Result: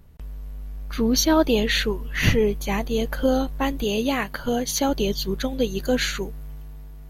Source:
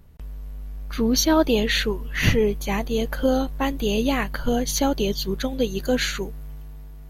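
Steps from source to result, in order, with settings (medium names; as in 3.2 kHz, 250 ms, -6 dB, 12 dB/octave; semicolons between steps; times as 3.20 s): 3.84–4.89 s: bass shelf 100 Hz -11 dB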